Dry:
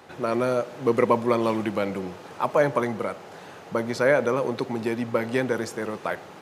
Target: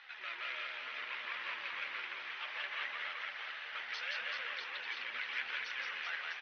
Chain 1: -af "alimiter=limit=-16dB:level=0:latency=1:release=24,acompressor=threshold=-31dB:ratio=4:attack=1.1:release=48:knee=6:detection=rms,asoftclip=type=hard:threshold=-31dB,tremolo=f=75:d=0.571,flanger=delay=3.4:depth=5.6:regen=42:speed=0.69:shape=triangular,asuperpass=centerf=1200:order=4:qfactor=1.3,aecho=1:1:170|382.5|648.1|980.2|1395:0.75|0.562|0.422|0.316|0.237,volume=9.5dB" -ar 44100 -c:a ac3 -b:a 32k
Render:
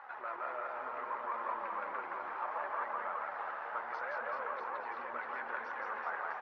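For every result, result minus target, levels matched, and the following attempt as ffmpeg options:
1000 Hz band +10.5 dB; compressor: peak gain reduction +6 dB
-af "alimiter=limit=-16dB:level=0:latency=1:release=24,acompressor=threshold=-31dB:ratio=4:attack=1.1:release=48:knee=6:detection=rms,asoftclip=type=hard:threshold=-31dB,tremolo=f=75:d=0.571,flanger=delay=3.4:depth=5.6:regen=42:speed=0.69:shape=triangular,asuperpass=centerf=2400:order=4:qfactor=1.3,aecho=1:1:170|382.5|648.1|980.2|1395:0.75|0.562|0.422|0.316|0.237,volume=9.5dB" -ar 44100 -c:a ac3 -b:a 32k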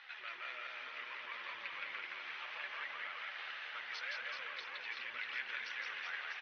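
compressor: peak gain reduction +6 dB
-af "alimiter=limit=-16dB:level=0:latency=1:release=24,acompressor=threshold=-22.5dB:ratio=4:attack=1.1:release=48:knee=6:detection=rms,asoftclip=type=hard:threshold=-31dB,tremolo=f=75:d=0.571,flanger=delay=3.4:depth=5.6:regen=42:speed=0.69:shape=triangular,asuperpass=centerf=2400:order=4:qfactor=1.3,aecho=1:1:170|382.5|648.1|980.2|1395:0.75|0.562|0.422|0.316|0.237,volume=9.5dB" -ar 44100 -c:a ac3 -b:a 32k

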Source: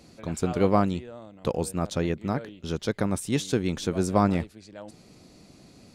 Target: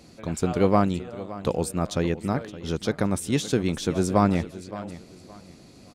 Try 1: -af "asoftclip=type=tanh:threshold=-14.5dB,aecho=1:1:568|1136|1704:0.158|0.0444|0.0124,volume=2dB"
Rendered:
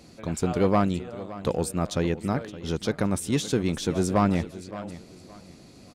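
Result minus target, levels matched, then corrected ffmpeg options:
soft clip: distortion +14 dB
-af "asoftclip=type=tanh:threshold=-5.5dB,aecho=1:1:568|1136|1704:0.158|0.0444|0.0124,volume=2dB"

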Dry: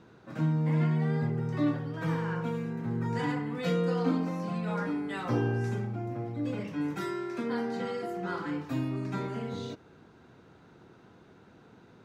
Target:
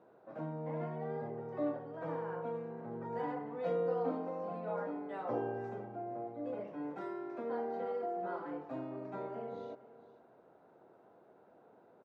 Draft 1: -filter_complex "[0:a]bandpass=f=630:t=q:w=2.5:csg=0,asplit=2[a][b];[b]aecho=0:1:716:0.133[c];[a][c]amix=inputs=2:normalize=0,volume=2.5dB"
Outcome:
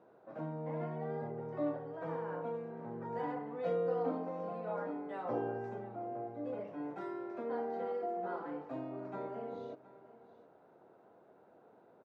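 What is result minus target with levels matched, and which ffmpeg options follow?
echo 0.255 s late
-filter_complex "[0:a]bandpass=f=630:t=q:w=2.5:csg=0,asplit=2[a][b];[b]aecho=0:1:461:0.133[c];[a][c]amix=inputs=2:normalize=0,volume=2.5dB"

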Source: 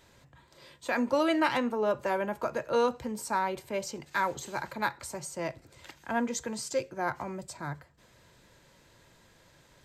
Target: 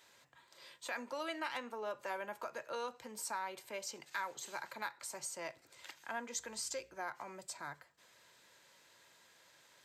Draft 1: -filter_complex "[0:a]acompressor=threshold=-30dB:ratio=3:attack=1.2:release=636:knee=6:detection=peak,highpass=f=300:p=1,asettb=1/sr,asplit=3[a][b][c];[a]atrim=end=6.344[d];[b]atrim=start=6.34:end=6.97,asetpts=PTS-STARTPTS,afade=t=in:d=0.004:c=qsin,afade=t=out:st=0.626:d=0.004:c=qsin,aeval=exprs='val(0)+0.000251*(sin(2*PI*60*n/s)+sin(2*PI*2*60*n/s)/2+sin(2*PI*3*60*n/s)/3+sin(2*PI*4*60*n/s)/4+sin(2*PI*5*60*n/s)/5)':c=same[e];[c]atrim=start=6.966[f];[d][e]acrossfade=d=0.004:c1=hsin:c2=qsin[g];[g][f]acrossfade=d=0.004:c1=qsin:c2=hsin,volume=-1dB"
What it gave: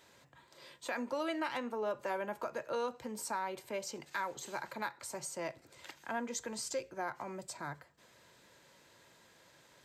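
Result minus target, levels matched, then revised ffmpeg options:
250 Hz band +5.5 dB
-filter_complex "[0:a]acompressor=threshold=-30dB:ratio=3:attack=1.2:release=636:knee=6:detection=peak,highpass=f=1.1k:p=1,asettb=1/sr,asplit=3[a][b][c];[a]atrim=end=6.344[d];[b]atrim=start=6.34:end=6.97,asetpts=PTS-STARTPTS,afade=t=in:d=0.004:c=qsin,afade=t=out:st=0.626:d=0.004:c=qsin,aeval=exprs='val(0)+0.000251*(sin(2*PI*60*n/s)+sin(2*PI*2*60*n/s)/2+sin(2*PI*3*60*n/s)/3+sin(2*PI*4*60*n/s)/4+sin(2*PI*5*60*n/s)/5)':c=same[e];[c]atrim=start=6.966[f];[d][e]acrossfade=d=0.004:c1=hsin:c2=qsin[g];[g][f]acrossfade=d=0.004:c1=qsin:c2=hsin,volume=-1dB"

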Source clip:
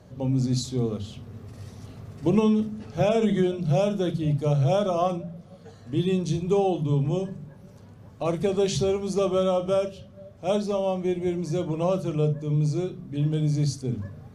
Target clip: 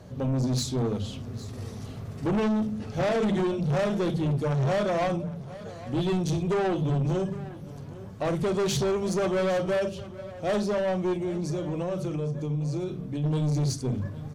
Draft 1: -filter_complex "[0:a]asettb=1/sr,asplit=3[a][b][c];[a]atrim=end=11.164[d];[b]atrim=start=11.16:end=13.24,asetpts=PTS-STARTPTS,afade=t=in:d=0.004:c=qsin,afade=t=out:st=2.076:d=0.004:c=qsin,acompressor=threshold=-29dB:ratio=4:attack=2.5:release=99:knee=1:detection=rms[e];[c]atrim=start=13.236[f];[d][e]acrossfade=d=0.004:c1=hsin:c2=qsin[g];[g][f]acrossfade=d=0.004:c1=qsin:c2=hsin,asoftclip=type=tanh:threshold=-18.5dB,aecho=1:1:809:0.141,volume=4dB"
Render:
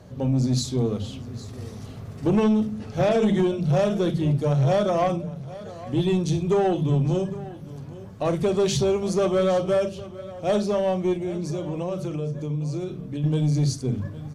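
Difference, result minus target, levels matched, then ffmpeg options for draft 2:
soft clip: distortion -8 dB
-filter_complex "[0:a]asettb=1/sr,asplit=3[a][b][c];[a]atrim=end=11.164[d];[b]atrim=start=11.16:end=13.24,asetpts=PTS-STARTPTS,afade=t=in:d=0.004:c=qsin,afade=t=out:st=2.076:d=0.004:c=qsin,acompressor=threshold=-29dB:ratio=4:attack=2.5:release=99:knee=1:detection=rms[e];[c]atrim=start=13.236[f];[d][e]acrossfade=d=0.004:c1=hsin:c2=qsin[g];[g][f]acrossfade=d=0.004:c1=qsin:c2=hsin,asoftclip=type=tanh:threshold=-26.5dB,aecho=1:1:809:0.141,volume=4dB"

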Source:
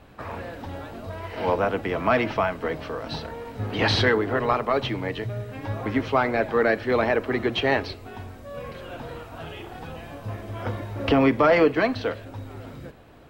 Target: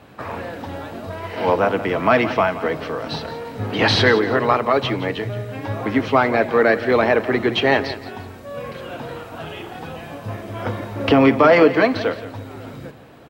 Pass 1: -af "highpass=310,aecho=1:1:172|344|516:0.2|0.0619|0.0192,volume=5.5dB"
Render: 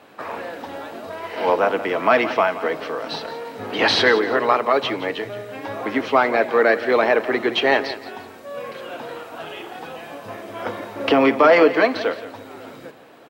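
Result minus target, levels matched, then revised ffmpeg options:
125 Hz band -13.5 dB
-af "highpass=100,aecho=1:1:172|344|516:0.2|0.0619|0.0192,volume=5.5dB"

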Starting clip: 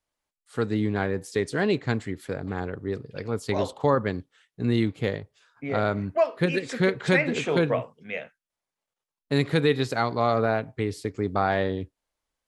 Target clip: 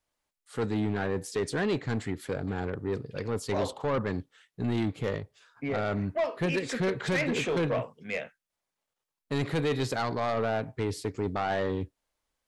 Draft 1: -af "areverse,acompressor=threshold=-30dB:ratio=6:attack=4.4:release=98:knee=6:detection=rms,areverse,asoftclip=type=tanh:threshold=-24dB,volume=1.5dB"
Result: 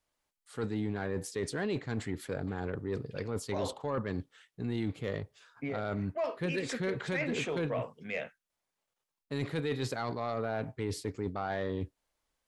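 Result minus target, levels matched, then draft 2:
compressor: peak gain reduction +9 dB
-af "areverse,acompressor=threshold=-19dB:ratio=6:attack=4.4:release=98:knee=6:detection=rms,areverse,asoftclip=type=tanh:threshold=-24dB,volume=1.5dB"

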